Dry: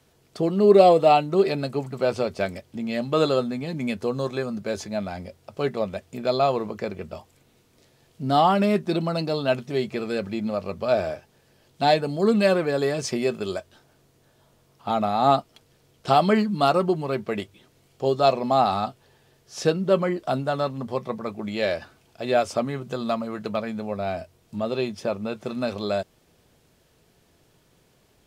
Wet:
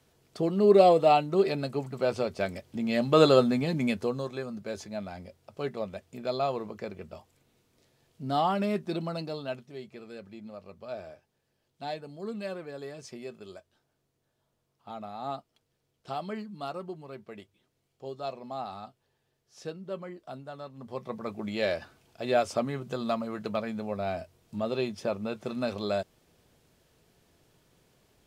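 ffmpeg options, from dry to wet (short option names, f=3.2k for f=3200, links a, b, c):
-af "volume=16dB,afade=t=in:st=2.42:d=1.11:silence=0.421697,afade=t=out:st=3.53:d=0.73:silence=0.281838,afade=t=out:st=9.09:d=0.63:silence=0.354813,afade=t=in:st=20.71:d=0.64:silence=0.223872"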